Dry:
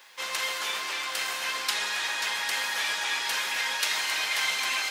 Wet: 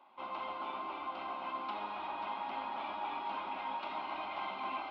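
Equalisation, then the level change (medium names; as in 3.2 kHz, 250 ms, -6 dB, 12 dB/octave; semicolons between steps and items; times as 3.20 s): distance through air 460 m; tape spacing loss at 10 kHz 43 dB; static phaser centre 470 Hz, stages 6; +6.5 dB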